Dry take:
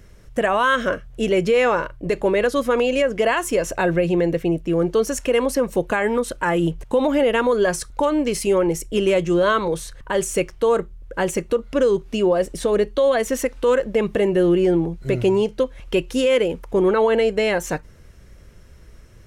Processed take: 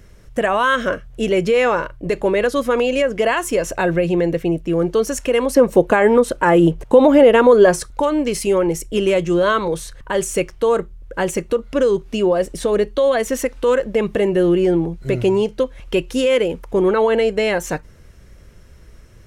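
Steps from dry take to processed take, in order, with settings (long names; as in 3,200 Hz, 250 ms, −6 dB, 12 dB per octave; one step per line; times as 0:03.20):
0:05.55–0:07.87: parametric band 440 Hz +7 dB 3 octaves
level +1.5 dB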